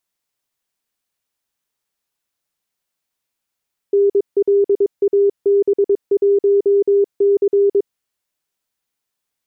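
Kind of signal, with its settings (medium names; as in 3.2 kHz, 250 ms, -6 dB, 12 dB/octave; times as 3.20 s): Morse "NLAB1C" 22 wpm 401 Hz -10 dBFS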